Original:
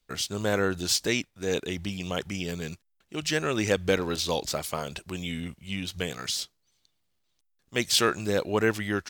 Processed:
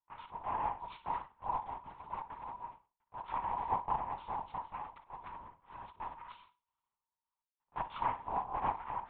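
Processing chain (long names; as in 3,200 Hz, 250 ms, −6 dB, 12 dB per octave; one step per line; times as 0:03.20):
cochlear-implant simulation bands 4
resonant band-pass 960 Hz, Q 11
on a send: flutter between parallel walls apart 8.5 metres, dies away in 0.31 s
on the sum: linear-prediction vocoder at 8 kHz whisper
level +3.5 dB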